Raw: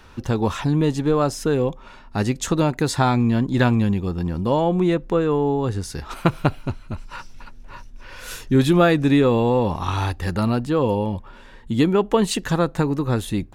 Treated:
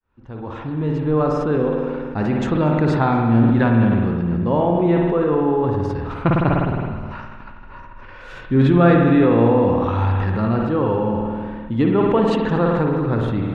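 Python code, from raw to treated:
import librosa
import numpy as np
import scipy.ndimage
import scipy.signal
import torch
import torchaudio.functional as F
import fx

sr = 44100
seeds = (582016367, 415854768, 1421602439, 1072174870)

p1 = fx.fade_in_head(x, sr, length_s=1.42)
p2 = scipy.signal.sosfilt(scipy.signal.butter(2, 2100.0, 'lowpass', fs=sr, output='sos'), p1)
p3 = p2 + fx.echo_feedback(p2, sr, ms=236, feedback_pct=52, wet_db=-20, dry=0)
p4 = fx.rev_spring(p3, sr, rt60_s=1.7, pass_ms=(52,), chirp_ms=20, drr_db=1.5)
p5 = fx.sustainer(p4, sr, db_per_s=24.0)
y = p5 * librosa.db_to_amplitude(-1.0)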